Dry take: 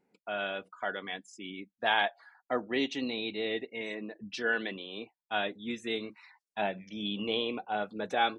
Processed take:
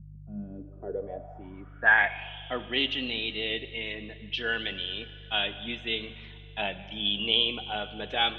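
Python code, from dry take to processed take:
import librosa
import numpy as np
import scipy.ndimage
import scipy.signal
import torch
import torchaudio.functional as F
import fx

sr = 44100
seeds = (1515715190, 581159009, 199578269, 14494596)

y = fx.dmg_buzz(x, sr, base_hz=50.0, harmonics=3, level_db=-47.0, tilt_db=-5, odd_only=False)
y = fx.rev_schroeder(y, sr, rt60_s=2.6, comb_ms=31, drr_db=12.5)
y = fx.filter_sweep_lowpass(y, sr, from_hz=190.0, to_hz=3100.0, start_s=0.33, end_s=2.35, q=7.0)
y = F.gain(torch.from_numpy(y), -2.5).numpy()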